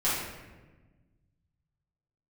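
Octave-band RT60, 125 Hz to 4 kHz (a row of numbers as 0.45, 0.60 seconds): 2.4, 1.9, 1.4, 1.1, 1.1, 0.80 seconds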